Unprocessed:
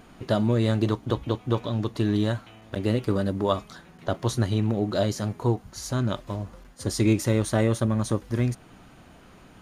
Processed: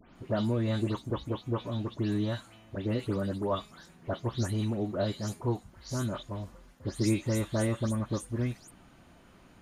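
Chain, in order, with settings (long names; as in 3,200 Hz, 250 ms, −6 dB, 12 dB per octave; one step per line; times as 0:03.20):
every frequency bin delayed by itself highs late, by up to 157 ms
level −6 dB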